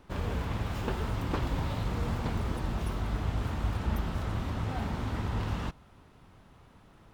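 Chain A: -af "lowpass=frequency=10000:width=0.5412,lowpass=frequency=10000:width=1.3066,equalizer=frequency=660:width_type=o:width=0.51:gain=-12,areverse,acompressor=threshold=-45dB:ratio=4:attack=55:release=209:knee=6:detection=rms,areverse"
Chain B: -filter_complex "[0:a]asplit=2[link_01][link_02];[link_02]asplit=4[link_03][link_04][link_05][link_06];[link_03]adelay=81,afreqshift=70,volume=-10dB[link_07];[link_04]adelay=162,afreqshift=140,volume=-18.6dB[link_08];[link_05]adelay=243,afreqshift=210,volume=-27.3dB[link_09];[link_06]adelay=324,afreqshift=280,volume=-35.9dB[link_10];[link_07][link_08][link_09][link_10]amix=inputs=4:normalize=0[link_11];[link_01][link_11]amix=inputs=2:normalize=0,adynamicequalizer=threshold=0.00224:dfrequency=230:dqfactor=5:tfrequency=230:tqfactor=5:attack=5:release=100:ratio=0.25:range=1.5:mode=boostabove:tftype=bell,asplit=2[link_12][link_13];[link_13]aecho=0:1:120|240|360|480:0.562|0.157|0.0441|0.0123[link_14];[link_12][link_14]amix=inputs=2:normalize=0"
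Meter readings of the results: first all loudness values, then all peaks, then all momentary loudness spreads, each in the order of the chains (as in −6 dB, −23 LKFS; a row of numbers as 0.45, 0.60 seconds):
−46.0, −31.5 LKFS; −30.0, −16.0 dBFS; 13, 2 LU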